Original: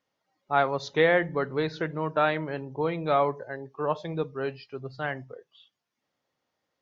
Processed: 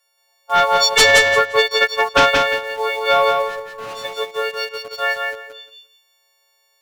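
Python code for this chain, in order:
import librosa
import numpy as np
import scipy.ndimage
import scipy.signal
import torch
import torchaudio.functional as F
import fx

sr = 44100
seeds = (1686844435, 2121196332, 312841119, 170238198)

p1 = fx.freq_snap(x, sr, grid_st=4)
p2 = scipy.signal.sosfilt(scipy.signal.butter(12, 440.0, 'highpass', fs=sr, output='sos'), p1)
p3 = fx.high_shelf(p2, sr, hz=2800.0, db=6.5)
p4 = fx.transient(p3, sr, attack_db=10, sustain_db=-12, at=(0.73, 2.35))
p5 = fx.quant_dither(p4, sr, seeds[0], bits=6, dither='none')
p6 = p4 + F.gain(torch.from_numpy(p5), -8.0).numpy()
p7 = fx.fold_sine(p6, sr, drive_db=4, ceiling_db=-4.5)
p8 = fx.tube_stage(p7, sr, drive_db=26.0, bias=0.4, at=(3.42, 4.05))
p9 = p8 + fx.echo_feedback(p8, sr, ms=175, feedback_pct=20, wet_db=-4.0, dry=0)
y = F.gain(torch.from_numpy(p9), -3.5).numpy()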